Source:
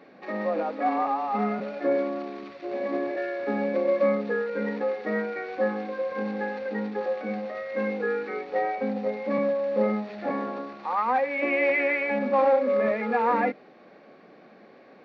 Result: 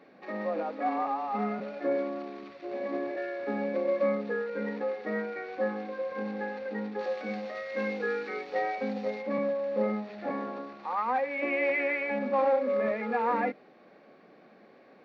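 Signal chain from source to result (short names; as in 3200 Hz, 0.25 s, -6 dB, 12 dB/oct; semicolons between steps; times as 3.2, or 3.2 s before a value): 6.99–9.22 high shelf 2800 Hz +11.5 dB; gain -4.5 dB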